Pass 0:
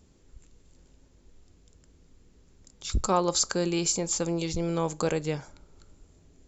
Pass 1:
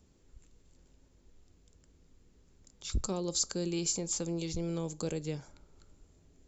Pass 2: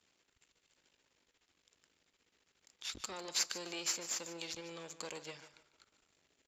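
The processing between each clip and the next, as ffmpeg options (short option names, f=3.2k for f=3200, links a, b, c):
-filter_complex "[0:a]acrossover=split=480|3000[a][b][c];[b]acompressor=threshold=-43dB:ratio=6[d];[a][d][c]amix=inputs=3:normalize=0,volume=-5dB"
-af "aeval=exprs='if(lt(val(0),0),0.251*val(0),val(0))':c=same,bandpass=f=2.6k:t=q:w=0.95:csg=0,aecho=1:1:149|298|447:0.2|0.0559|0.0156,volume=7.5dB"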